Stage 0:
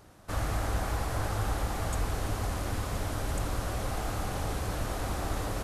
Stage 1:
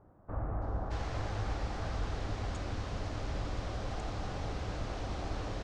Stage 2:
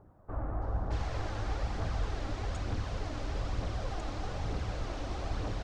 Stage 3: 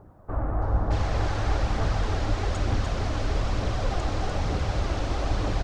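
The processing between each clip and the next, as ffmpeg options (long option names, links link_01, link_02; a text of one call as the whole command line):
ffmpeg -i in.wav -filter_complex "[0:a]lowpass=frequency=5800:width=0.5412,lowpass=frequency=5800:width=1.3066,acrossover=split=1300[link_01][link_02];[link_02]adelay=620[link_03];[link_01][link_03]amix=inputs=2:normalize=0,volume=-4.5dB" out.wav
ffmpeg -i in.wav -af "aphaser=in_gain=1:out_gain=1:delay=3.8:decay=0.36:speed=1.1:type=triangular" out.wav
ffmpeg -i in.wav -af "aecho=1:1:297:0.562,volume=8dB" out.wav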